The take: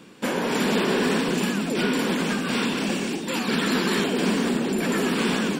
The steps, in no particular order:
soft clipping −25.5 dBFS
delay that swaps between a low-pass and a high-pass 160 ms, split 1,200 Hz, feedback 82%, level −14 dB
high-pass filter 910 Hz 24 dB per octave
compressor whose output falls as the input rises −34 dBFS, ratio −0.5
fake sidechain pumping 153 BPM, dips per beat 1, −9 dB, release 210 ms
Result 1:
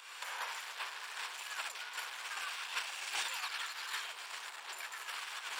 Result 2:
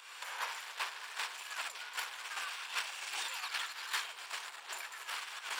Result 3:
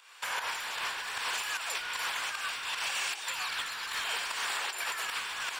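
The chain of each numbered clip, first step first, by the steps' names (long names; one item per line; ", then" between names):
fake sidechain pumping, then delay that swaps between a low-pass and a high-pass, then soft clipping, then compressor whose output falls as the input rises, then high-pass filter
soft clipping, then fake sidechain pumping, then delay that swaps between a low-pass and a high-pass, then compressor whose output falls as the input rises, then high-pass filter
high-pass filter, then soft clipping, then delay that swaps between a low-pass and a high-pass, then fake sidechain pumping, then compressor whose output falls as the input rises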